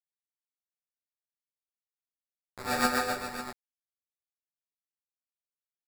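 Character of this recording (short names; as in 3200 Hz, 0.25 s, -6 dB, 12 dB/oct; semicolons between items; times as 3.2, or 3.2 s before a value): a quantiser's noise floor 6-bit, dither none; random-step tremolo 1.4 Hz; aliases and images of a low sample rate 3100 Hz, jitter 0%; a shimmering, thickened sound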